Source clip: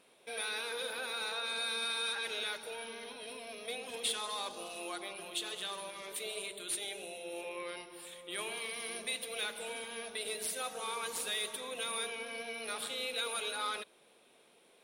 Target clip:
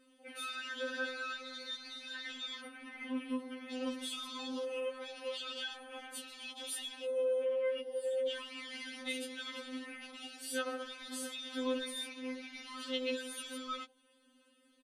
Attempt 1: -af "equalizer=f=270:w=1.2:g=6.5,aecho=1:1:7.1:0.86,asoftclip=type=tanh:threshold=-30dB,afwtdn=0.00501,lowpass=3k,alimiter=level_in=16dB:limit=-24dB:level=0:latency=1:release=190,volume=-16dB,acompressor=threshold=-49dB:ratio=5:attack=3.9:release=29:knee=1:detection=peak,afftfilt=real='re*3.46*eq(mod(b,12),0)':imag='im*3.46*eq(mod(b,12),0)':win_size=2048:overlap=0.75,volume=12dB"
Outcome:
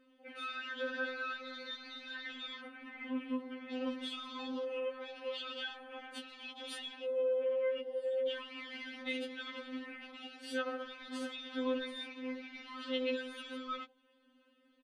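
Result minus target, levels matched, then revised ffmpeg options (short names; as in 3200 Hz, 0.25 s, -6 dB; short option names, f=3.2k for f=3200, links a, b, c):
8000 Hz band -13.0 dB
-af "equalizer=f=270:w=1.2:g=6.5,aecho=1:1:7.1:0.86,asoftclip=type=tanh:threshold=-30dB,afwtdn=0.00501,lowpass=11k,alimiter=level_in=16dB:limit=-24dB:level=0:latency=1:release=190,volume=-16dB,acompressor=threshold=-49dB:ratio=5:attack=3.9:release=29:knee=1:detection=peak,afftfilt=real='re*3.46*eq(mod(b,12),0)':imag='im*3.46*eq(mod(b,12),0)':win_size=2048:overlap=0.75,volume=12dB"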